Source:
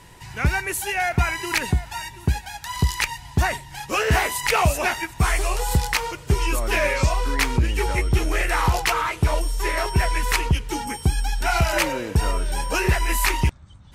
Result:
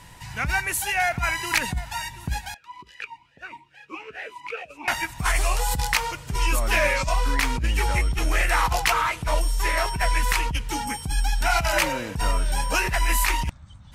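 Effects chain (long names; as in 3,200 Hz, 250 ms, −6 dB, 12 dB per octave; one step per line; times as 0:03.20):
parametric band 390 Hz −10 dB 0.58 octaves
compressor whose output falls as the input rises −20 dBFS, ratio −0.5
0:02.54–0:04.88: formant filter swept between two vowels e-u 2.4 Hz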